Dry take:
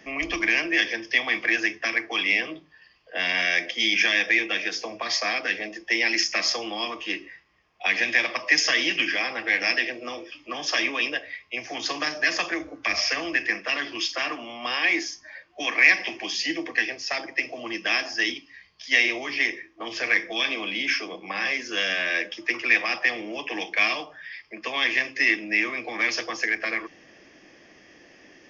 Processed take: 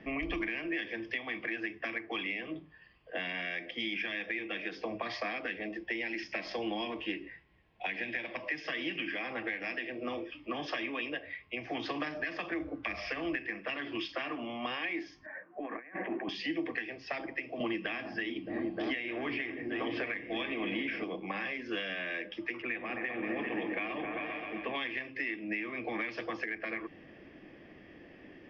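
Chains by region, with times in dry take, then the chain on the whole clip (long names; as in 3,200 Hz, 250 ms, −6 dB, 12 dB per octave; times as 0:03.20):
0:05.76–0:08.50: log-companded quantiser 6 bits + notch filter 1,200 Hz, Q 5.1
0:15.26–0:16.29: Chebyshev band-pass filter 190–1,600 Hz, order 3 + compressor whose output falls as the input rises −39 dBFS
0:17.60–0:21.04: high-frequency loss of the air 120 metres + echo whose low-pass opens from repeat to repeat 308 ms, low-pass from 200 Hz, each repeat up 1 octave, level −3 dB + multiband upward and downward compressor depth 70%
0:22.62–0:24.75: high-frequency loss of the air 320 metres + echo whose low-pass opens from repeat to repeat 131 ms, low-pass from 400 Hz, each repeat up 2 octaves, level −3 dB
whole clip: low-pass filter 3,500 Hz 24 dB per octave; downward compressor 4 to 1, threshold −30 dBFS; low-shelf EQ 410 Hz +11.5 dB; level −5.5 dB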